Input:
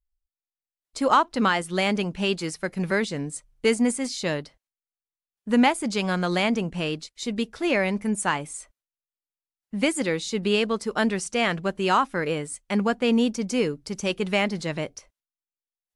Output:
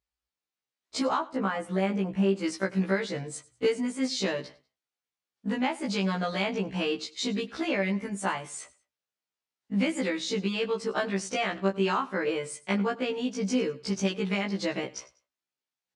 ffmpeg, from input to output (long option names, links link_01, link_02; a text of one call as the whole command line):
ffmpeg -i in.wav -filter_complex "[0:a]asettb=1/sr,asplit=3[link_01][link_02][link_03];[link_01]atrim=end=1.194[link_04];[link_02]atrim=start=1.19:end=2.44,asetpts=PTS-STARTPTS,afade=type=in:duration=0.004:curve=qsin,afade=type=out:start_time=1.246:duration=0.004:curve=qsin,equalizer=frequency=4100:width_type=o:width=1.7:gain=-14[link_05];[link_03]atrim=start=2.436[link_06];[link_04][link_05]acrossfade=duration=0.004:curve1=hsin:curve2=qsin[link_07];[link_07][link_06]acrossfade=duration=0.004:curve1=qsin:curve2=hsin,acompressor=threshold=-32dB:ratio=6,highpass=110,lowpass=5800,asplit=2[link_08][link_09];[link_09]aecho=0:1:97|194:0.0944|0.0293[link_10];[link_08][link_10]amix=inputs=2:normalize=0,afftfilt=real='re*1.73*eq(mod(b,3),0)':imag='im*1.73*eq(mod(b,3),0)':win_size=2048:overlap=0.75,volume=9dB" out.wav